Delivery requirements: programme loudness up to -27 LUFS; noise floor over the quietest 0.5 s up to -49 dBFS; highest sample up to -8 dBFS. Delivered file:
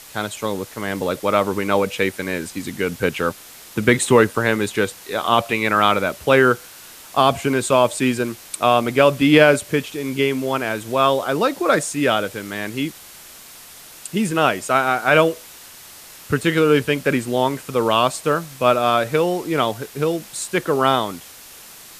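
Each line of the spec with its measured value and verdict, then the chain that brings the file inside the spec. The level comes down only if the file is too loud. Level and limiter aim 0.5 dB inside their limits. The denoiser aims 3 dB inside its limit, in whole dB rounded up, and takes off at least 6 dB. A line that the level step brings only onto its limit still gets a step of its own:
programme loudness -19.0 LUFS: fail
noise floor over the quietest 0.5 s -42 dBFS: fail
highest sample -1.5 dBFS: fail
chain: gain -8.5 dB

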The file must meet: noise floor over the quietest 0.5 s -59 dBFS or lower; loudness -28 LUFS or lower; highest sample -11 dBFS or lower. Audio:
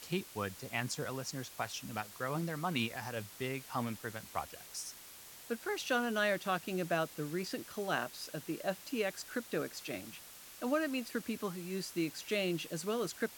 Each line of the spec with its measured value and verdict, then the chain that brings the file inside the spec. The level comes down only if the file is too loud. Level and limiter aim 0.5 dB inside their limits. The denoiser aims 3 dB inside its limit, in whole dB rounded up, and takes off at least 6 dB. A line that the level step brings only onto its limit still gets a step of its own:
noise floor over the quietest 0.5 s -53 dBFS: fail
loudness -37.5 LUFS: OK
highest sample -19.0 dBFS: OK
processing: denoiser 9 dB, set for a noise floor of -53 dBFS

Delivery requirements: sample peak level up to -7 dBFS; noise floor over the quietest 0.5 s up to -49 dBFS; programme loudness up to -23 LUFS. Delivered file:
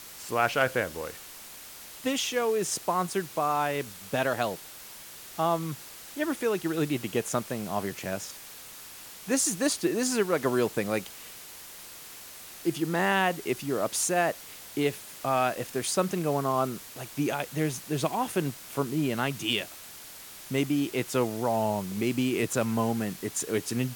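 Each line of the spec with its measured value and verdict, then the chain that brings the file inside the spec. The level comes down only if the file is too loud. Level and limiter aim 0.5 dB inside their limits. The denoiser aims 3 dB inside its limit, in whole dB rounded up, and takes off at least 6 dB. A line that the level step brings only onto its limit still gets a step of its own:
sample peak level -10.5 dBFS: OK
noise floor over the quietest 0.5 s -46 dBFS: fail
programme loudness -29.0 LUFS: OK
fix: denoiser 6 dB, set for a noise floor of -46 dBFS

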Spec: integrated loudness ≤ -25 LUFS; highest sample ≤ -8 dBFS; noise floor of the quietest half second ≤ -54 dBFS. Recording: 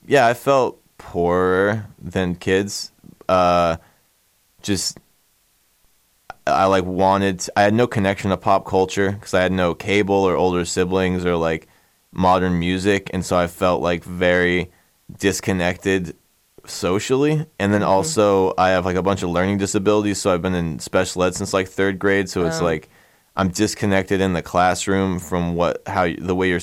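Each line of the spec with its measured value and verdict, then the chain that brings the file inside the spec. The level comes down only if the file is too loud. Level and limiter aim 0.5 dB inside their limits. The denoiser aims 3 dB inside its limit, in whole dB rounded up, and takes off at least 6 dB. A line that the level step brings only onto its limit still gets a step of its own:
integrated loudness -19.5 LUFS: fail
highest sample -5.0 dBFS: fail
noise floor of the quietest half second -62 dBFS: OK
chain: gain -6 dB

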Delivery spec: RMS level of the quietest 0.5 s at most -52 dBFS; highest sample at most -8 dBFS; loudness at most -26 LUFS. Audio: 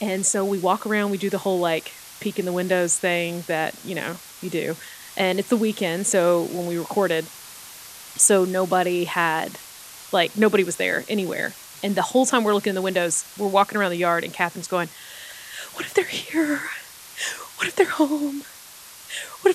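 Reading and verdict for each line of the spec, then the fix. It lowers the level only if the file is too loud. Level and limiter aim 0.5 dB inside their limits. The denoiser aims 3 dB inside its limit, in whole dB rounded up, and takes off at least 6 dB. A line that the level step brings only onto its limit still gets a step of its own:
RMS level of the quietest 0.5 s -44 dBFS: fail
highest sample -4.0 dBFS: fail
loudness -22.5 LUFS: fail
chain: denoiser 7 dB, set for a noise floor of -44 dBFS; gain -4 dB; limiter -8.5 dBFS

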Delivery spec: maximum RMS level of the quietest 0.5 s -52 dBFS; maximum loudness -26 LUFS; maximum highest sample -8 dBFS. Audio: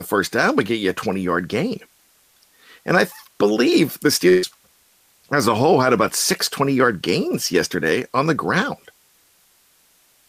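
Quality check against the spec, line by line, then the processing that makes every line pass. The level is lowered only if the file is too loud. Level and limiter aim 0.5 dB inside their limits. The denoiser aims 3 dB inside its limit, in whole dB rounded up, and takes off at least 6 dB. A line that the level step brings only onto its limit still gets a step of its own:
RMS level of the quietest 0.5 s -58 dBFS: OK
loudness -19.0 LUFS: fail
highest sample -4.5 dBFS: fail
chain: gain -7.5 dB

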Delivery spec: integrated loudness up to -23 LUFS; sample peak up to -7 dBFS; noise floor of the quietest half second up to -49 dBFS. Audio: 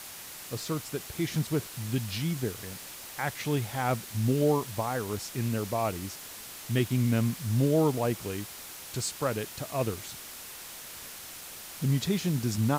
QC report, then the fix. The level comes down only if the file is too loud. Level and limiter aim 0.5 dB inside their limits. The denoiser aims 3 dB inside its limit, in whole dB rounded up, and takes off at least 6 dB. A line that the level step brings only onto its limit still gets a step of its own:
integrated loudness -31.0 LUFS: OK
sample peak -14.5 dBFS: OK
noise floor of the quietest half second -44 dBFS: fail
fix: denoiser 8 dB, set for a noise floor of -44 dBFS

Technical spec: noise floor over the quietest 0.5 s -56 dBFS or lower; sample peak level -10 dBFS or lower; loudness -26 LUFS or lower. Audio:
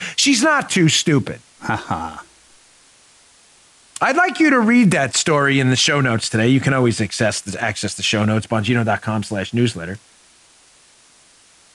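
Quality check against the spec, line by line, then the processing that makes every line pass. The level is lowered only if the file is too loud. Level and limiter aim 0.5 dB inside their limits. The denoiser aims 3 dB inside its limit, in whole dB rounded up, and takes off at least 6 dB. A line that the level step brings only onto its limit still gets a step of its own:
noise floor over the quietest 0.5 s -51 dBFS: fail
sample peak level -5.5 dBFS: fail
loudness -17.0 LUFS: fail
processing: gain -9.5 dB

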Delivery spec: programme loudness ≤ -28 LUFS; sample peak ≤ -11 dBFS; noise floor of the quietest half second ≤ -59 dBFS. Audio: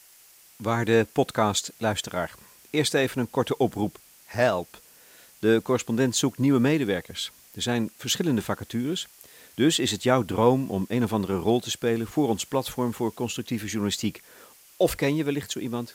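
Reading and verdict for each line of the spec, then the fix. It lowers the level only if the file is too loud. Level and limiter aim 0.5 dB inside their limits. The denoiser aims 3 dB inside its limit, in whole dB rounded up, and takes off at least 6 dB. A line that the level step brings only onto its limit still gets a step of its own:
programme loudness -25.5 LUFS: fail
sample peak -5.5 dBFS: fail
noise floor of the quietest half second -54 dBFS: fail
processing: denoiser 6 dB, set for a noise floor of -54 dBFS; gain -3 dB; limiter -11.5 dBFS

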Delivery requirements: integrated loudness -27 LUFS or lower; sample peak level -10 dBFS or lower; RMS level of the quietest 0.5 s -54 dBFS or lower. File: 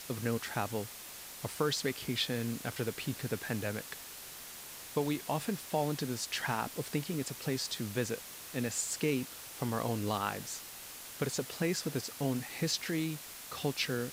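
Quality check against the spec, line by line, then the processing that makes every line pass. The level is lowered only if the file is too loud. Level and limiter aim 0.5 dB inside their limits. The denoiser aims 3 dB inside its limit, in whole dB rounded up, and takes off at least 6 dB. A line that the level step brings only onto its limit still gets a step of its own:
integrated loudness -35.5 LUFS: OK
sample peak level -17.5 dBFS: OK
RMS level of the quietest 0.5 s -48 dBFS: fail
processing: denoiser 9 dB, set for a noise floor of -48 dBFS

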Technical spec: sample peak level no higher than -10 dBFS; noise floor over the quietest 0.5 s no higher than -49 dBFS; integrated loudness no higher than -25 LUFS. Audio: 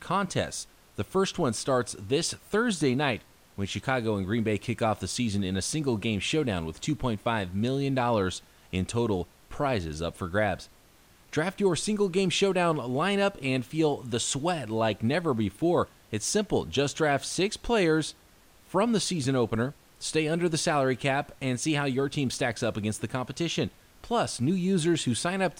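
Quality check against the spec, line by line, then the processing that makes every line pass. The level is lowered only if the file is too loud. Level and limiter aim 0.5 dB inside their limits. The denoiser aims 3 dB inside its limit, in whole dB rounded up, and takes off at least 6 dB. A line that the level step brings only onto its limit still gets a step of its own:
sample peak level -12.5 dBFS: OK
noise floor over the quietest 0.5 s -58 dBFS: OK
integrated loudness -28.0 LUFS: OK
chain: none

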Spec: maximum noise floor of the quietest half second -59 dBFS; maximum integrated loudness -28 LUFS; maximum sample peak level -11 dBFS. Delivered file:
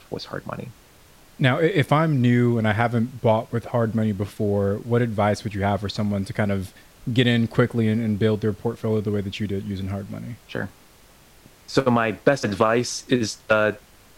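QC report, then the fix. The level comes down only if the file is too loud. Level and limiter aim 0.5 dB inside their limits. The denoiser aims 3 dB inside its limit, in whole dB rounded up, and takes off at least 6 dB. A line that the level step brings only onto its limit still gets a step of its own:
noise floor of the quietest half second -52 dBFS: fail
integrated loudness -22.5 LUFS: fail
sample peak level -4.0 dBFS: fail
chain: denoiser 6 dB, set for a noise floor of -52 dBFS; gain -6 dB; limiter -11.5 dBFS

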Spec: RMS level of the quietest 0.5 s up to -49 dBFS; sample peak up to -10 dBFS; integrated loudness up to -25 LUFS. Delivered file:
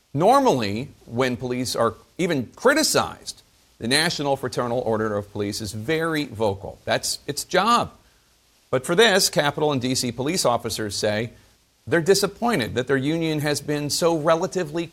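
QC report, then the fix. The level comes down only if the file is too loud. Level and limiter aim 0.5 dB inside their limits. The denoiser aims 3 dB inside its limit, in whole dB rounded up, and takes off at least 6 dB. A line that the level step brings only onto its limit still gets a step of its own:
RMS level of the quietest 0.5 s -60 dBFS: OK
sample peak -3.5 dBFS: fail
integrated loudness -22.0 LUFS: fail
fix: gain -3.5 dB; limiter -10.5 dBFS

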